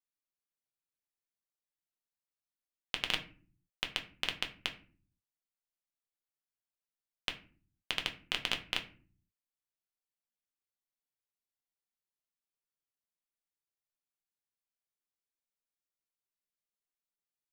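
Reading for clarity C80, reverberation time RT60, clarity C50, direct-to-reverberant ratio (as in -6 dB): 18.0 dB, 0.45 s, 14.0 dB, 3.5 dB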